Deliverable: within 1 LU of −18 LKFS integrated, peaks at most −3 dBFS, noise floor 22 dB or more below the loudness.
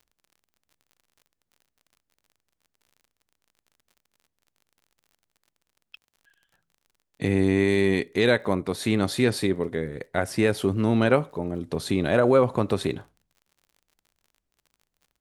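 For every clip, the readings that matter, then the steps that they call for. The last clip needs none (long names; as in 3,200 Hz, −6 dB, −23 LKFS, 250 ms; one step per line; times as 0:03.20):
crackle rate 45 per second; integrated loudness −24.0 LKFS; sample peak −7.0 dBFS; target loudness −18.0 LKFS
→ click removal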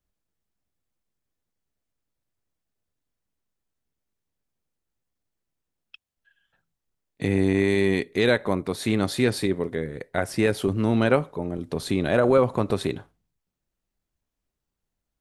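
crackle rate 0 per second; integrated loudness −24.0 LKFS; sample peak −7.0 dBFS; target loudness −18.0 LKFS
→ level +6 dB
brickwall limiter −3 dBFS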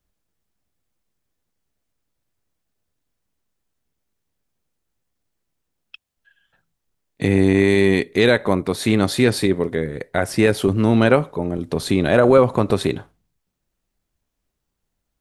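integrated loudness −18.0 LKFS; sample peak −3.0 dBFS; background noise floor −78 dBFS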